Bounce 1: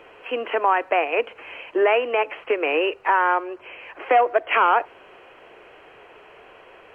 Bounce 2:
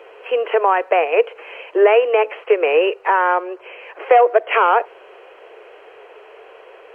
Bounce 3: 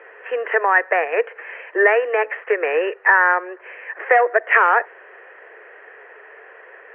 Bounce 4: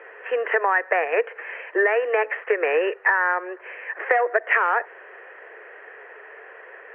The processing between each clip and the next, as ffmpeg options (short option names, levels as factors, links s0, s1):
-af "lowshelf=f=310:t=q:w=3:g=-12,volume=1.19"
-af "lowpass=f=1800:t=q:w=9.3,volume=0.531"
-af "acompressor=threshold=0.158:ratio=6"